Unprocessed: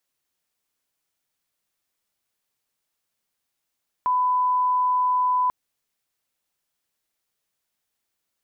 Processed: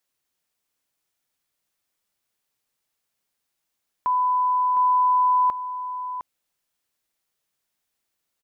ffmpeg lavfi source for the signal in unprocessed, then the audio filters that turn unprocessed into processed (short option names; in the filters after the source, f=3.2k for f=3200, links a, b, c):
-f lavfi -i "sine=f=1000:d=1.44:r=44100,volume=0.06dB"
-af "aecho=1:1:709:0.335"